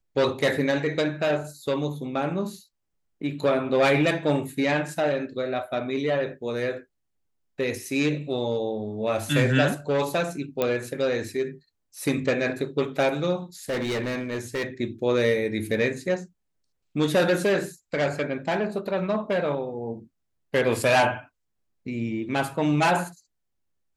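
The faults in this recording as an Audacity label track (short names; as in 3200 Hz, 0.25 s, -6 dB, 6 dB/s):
10.620000	10.620000	pop -11 dBFS
13.690000	14.660000	clipped -24 dBFS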